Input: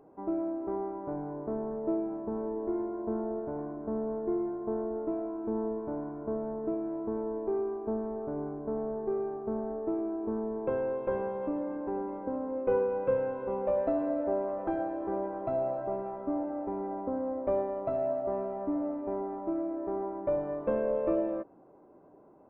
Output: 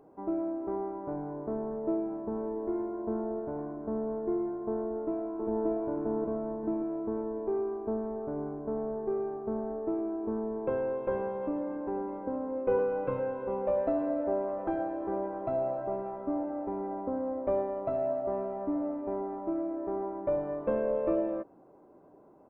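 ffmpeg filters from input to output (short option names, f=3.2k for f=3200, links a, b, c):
-filter_complex "[0:a]asettb=1/sr,asplit=3[a][b][c];[a]atrim=end=2.444[d];[b]atrim=start=2.44:end=2.92,asetpts=PTS-STARTPTS,afade=t=in:d=0.004:c=qsin,afade=t=out:st=0.476:d=0.004:c=qsin,aemphasis=mode=production:type=cd[e];[c]atrim=start=2.916[f];[d][e]acrossfade=d=0.004:c1=hsin:c2=qsin[g];[g][f]acrossfade=d=0.004:c1=qsin:c2=hsin,asplit=2[h][i];[i]afade=t=in:st=4.81:d=0.01,afade=t=out:st=5.66:d=0.01,aecho=0:1:580|1160|1740|2320|2900|3480:0.944061|0.424827|0.191172|0.0860275|0.0387124|0.0174206[j];[h][j]amix=inputs=2:normalize=0,asettb=1/sr,asplit=3[k][l][m];[k]atrim=end=12.784[n];[l]atrim=start=12.78:end=13.2,asetpts=PTS-STARTPTS,afade=t=in:d=0.004:c=qsin,afade=t=out:st=0.416:d=0.004:c=qsin,aecho=1:1:6.7:0.72,atrim=end_sample=18522[o];[m]atrim=start=13.196[p];[n][o]acrossfade=d=0.004:c1=hsin:c2=qsin[q];[q][p]acrossfade=d=0.004:c1=qsin:c2=hsin"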